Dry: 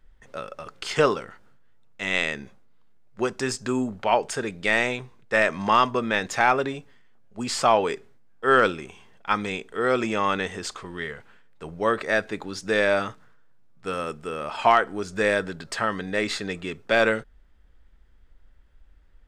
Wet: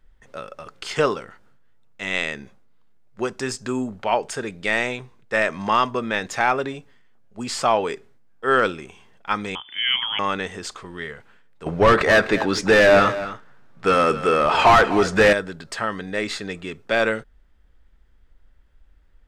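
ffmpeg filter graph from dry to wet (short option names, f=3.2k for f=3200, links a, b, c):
-filter_complex "[0:a]asettb=1/sr,asplit=3[a][b][c];[a]atrim=end=9.554[d];[b]atrim=start=9.55:end=10.19,asetpts=PTS-STARTPTS,afade=t=in:d=0.004:c=qsin,afade=t=out:st=0.636:d=0.004:c=qsin,lowpass=f=3k:t=q:w=0.5098,lowpass=f=3k:t=q:w=0.6013,lowpass=f=3k:t=q:w=0.9,lowpass=f=3k:t=q:w=2.563,afreqshift=-3500,acompressor=mode=upward:threshold=-33dB:ratio=2.5:attack=3.2:release=140:knee=2.83:detection=peak[e];[c]atrim=start=10.186[f];[d][e]acrossfade=d=0.004:c1=hsin:c2=qsin[g];[g][f]acrossfade=d=0.004:c1=qsin:c2=hsin,asettb=1/sr,asplit=3[h][i][j];[h]atrim=end=11.664[k];[i]atrim=start=11.66:end=15.33,asetpts=PTS-STARTPTS,afade=t=in:d=0.004:c=qsin,afade=t=out:st=3.666:d=0.004:c=qsin,asplit=2[l][m];[m]highpass=f=720:p=1,volume=24dB,asoftclip=type=tanh:threshold=-6dB[n];[l][n]amix=inputs=2:normalize=0,lowpass=f=2.5k:p=1,volume=-6dB,lowshelf=f=200:g=10,aecho=1:1:252:0.2,atrim=end_sample=161847[o];[j]atrim=start=15.326[p];[k][o]acrossfade=d=0.004:c1=hsin:c2=qsin[q];[q][p]acrossfade=d=0.004:c1=qsin:c2=hsin"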